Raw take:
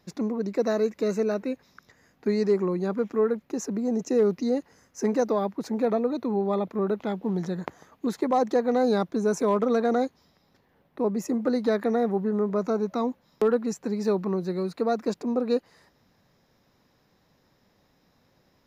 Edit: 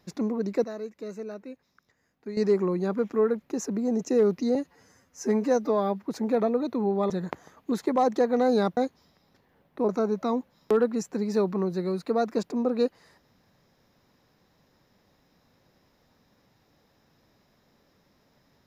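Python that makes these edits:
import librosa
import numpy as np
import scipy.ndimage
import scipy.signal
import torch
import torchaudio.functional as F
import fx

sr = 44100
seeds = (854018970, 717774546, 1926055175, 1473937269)

y = fx.edit(x, sr, fx.clip_gain(start_s=0.64, length_s=1.73, db=-11.5),
    fx.stretch_span(start_s=4.55, length_s=1.0, factor=1.5),
    fx.cut(start_s=6.6, length_s=0.85),
    fx.cut(start_s=9.12, length_s=0.85),
    fx.cut(start_s=11.09, length_s=1.51), tone=tone)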